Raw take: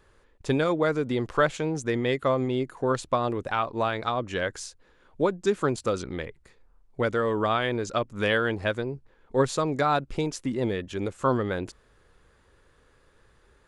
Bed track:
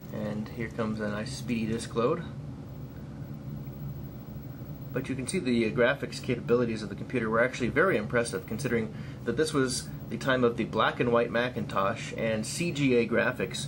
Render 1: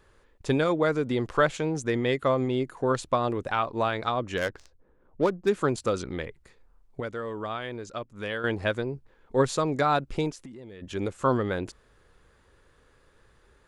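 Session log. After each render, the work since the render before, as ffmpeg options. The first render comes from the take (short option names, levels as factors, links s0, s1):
-filter_complex "[0:a]asettb=1/sr,asplit=3[s0][s1][s2];[s0]atrim=end=4.374[s3];[s1]atrim=start=4.37:end=5.49,asetpts=PTS-STARTPTS,afade=t=in:d=0.004:c=qsin,afade=t=out:st=1.116:d=0.004:c=qsin,adynamicsmooth=sensitivity=5:basefreq=810[s4];[s2]atrim=start=5.486[s5];[s3][s4]acrossfade=d=0.004:c1=hsin:c2=qsin[s6];[s6][s5]acrossfade=d=0.004:c1=qsin:c2=hsin,asplit=3[s7][s8][s9];[s7]afade=t=out:st=10.31:d=0.02[s10];[s8]acompressor=threshold=0.01:ratio=12:attack=3.2:release=140:knee=1:detection=peak,afade=t=in:st=10.31:d=0.02,afade=t=out:st=10.81:d=0.02[s11];[s9]afade=t=in:st=10.81:d=0.02[s12];[s10][s11][s12]amix=inputs=3:normalize=0,asplit=3[s13][s14][s15];[s13]atrim=end=7.002[s16];[s14]atrim=start=6.998:end=8.442,asetpts=PTS-STARTPTS,volume=0.376[s17];[s15]atrim=start=8.438[s18];[s16][s17]acrossfade=d=0.004:c1=hsin:c2=hsin[s19];[s19][s18]acrossfade=d=0.004:c1=hsin:c2=hsin"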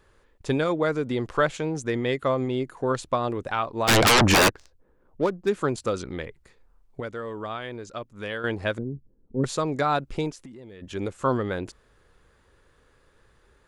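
-filter_complex "[0:a]asplit=3[s0][s1][s2];[s0]afade=t=out:st=3.87:d=0.02[s3];[s1]aeval=exprs='0.211*sin(PI/2*8.91*val(0)/0.211)':c=same,afade=t=in:st=3.87:d=0.02,afade=t=out:st=4.48:d=0.02[s4];[s2]afade=t=in:st=4.48:d=0.02[s5];[s3][s4][s5]amix=inputs=3:normalize=0,asettb=1/sr,asplit=3[s6][s7][s8];[s6]atrim=end=8.784[s9];[s7]atrim=start=8.78:end=9.44,asetpts=PTS-STARTPTS,afade=t=in:d=0.004:c=qsin,afade=t=out:st=0.656:d=0.004:c=qsin,lowpass=f=250:t=q:w=1.5[s10];[s8]atrim=start=9.436[s11];[s9][s10]acrossfade=d=0.004:c1=hsin:c2=qsin[s12];[s12][s11]acrossfade=d=0.004:c1=qsin:c2=hsin"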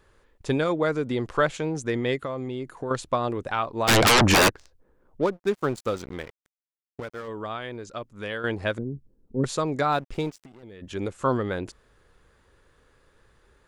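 -filter_complex "[0:a]asettb=1/sr,asplit=3[s0][s1][s2];[s0]atrim=end=2.224[s3];[s1]atrim=start=2.22:end=2.91,asetpts=PTS-STARTPTS,afade=t=in:d=0.004:c=qsin,afade=t=out:st=0.686:d=0.004:c=qsin,acompressor=threshold=0.0447:ratio=6:attack=3.2:release=140:knee=1:detection=peak[s4];[s2]atrim=start=2.906[s5];[s3][s4]acrossfade=d=0.004:c1=hsin:c2=qsin[s6];[s6][s5]acrossfade=d=0.004:c1=qsin:c2=hsin,asplit=3[s7][s8][s9];[s7]afade=t=out:st=5.31:d=0.02[s10];[s8]aeval=exprs='sgn(val(0))*max(abs(val(0))-0.00891,0)':c=same,afade=t=in:st=5.31:d=0.02,afade=t=out:st=7.27:d=0.02[s11];[s9]afade=t=in:st=7.27:d=0.02[s12];[s10][s11][s12]amix=inputs=3:normalize=0,asettb=1/sr,asplit=3[s13][s14][s15];[s13]atrim=end=9.924[s16];[s14]atrim=start=9.92:end=10.63,asetpts=PTS-STARTPTS,afade=t=in:d=0.004:c=qsin,afade=t=out:st=0.706:d=0.004:c=qsin,aeval=exprs='sgn(val(0))*max(abs(val(0))-0.00473,0)':c=same[s17];[s15]atrim=start=10.626[s18];[s16][s17]acrossfade=d=0.004:c1=hsin:c2=qsin[s19];[s19][s18]acrossfade=d=0.004:c1=qsin:c2=hsin"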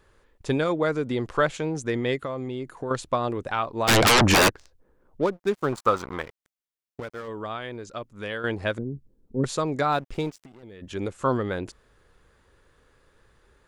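-filter_complex "[0:a]asettb=1/sr,asplit=3[s0][s1][s2];[s0]atrim=end=5.724[s3];[s1]atrim=start=5.72:end=6.22,asetpts=PTS-STARTPTS,afade=t=in:d=0.004:c=qsin,afade=t=out:st=0.496:d=0.004:c=qsin,equalizer=f=1100:w=1.3:g=14.5[s4];[s2]atrim=start=6.216[s5];[s3][s4]acrossfade=d=0.004:c1=hsin:c2=qsin[s6];[s6][s5]acrossfade=d=0.004:c1=qsin:c2=hsin"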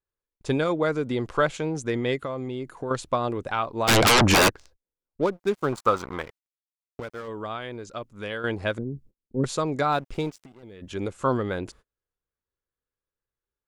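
-af "agate=range=0.0224:threshold=0.00355:ratio=16:detection=peak,bandreject=f=1800:w=21"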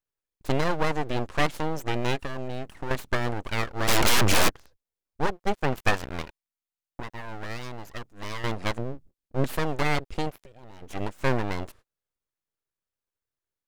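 -af "aeval=exprs='0.447*(cos(1*acos(clip(val(0)/0.447,-1,1)))-cos(1*PI/2))+0.0355*(cos(8*acos(clip(val(0)/0.447,-1,1)))-cos(8*PI/2))':c=same,aeval=exprs='abs(val(0))':c=same"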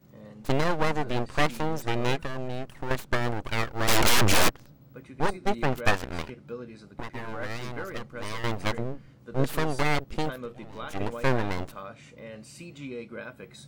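-filter_complex "[1:a]volume=0.211[s0];[0:a][s0]amix=inputs=2:normalize=0"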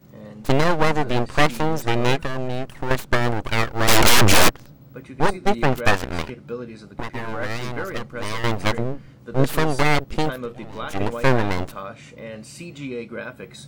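-af "volume=2.24,alimiter=limit=0.794:level=0:latency=1"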